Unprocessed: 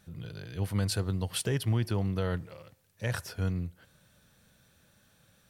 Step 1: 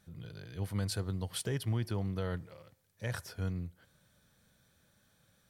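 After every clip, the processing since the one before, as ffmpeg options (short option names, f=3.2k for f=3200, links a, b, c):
-af "bandreject=f=2.7k:w=13,volume=-5dB"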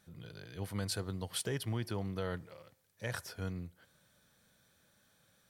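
-af "lowshelf=f=160:g=-8.5,volume=1dB"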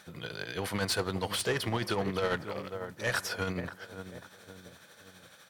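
-filter_complex "[0:a]asplit=2[a][b];[b]adelay=540,lowpass=f=1.1k:p=1,volume=-12dB,asplit=2[c][d];[d]adelay=540,lowpass=f=1.1k:p=1,volume=0.47,asplit=2[e][f];[f]adelay=540,lowpass=f=1.1k:p=1,volume=0.47,asplit=2[g][h];[h]adelay=540,lowpass=f=1.1k:p=1,volume=0.47,asplit=2[i][j];[j]adelay=540,lowpass=f=1.1k:p=1,volume=0.47[k];[a][c][e][g][i][k]amix=inputs=6:normalize=0,asplit=2[l][m];[m]highpass=f=720:p=1,volume=21dB,asoftclip=type=tanh:threshold=-23dB[n];[l][n]amix=inputs=2:normalize=0,lowpass=f=4.2k:p=1,volume=-6dB,tremolo=f=12:d=0.46,volume=4.5dB"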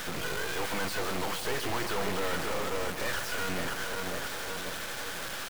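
-filter_complex "[0:a]asplit=2[a][b];[b]highpass=f=720:p=1,volume=36dB,asoftclip=type=tanh:threshold=-19.5dB[c];[a][c]amix=inputs=2:normalize=0,lowpass=f=1.7k:p=1,volume=-6dB,aecho=1:1:142:0.266,acrusher=bits=3:dc=4:mix=0:aa=0.000001,volume=-1dB"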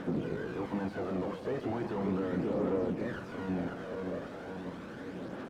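-af "bandpass=f=250:t=q:w=1.6:csg=0,aphaser=in_gain=1:out_gain=1:delay=1.9:decay=0.35:speed=0.37:type=triangular,volume=7.5dB"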